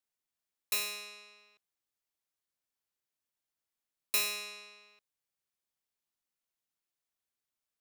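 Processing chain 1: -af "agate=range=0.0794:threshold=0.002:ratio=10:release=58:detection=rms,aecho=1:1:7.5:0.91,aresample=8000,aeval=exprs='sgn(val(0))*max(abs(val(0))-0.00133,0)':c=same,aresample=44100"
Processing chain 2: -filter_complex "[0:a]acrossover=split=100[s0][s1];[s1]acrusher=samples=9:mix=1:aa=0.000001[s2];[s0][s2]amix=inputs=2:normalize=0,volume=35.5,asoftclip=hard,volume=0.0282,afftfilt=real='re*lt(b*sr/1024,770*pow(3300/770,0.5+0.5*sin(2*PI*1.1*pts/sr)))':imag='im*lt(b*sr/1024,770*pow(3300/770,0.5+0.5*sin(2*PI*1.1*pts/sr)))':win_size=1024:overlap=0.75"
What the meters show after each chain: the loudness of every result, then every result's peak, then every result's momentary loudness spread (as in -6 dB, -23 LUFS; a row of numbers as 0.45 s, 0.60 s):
-39.5 LUFS, -45.5 LUFS; -24.0 dBFS, -28.0 dBFS; 16 LU, 17 LU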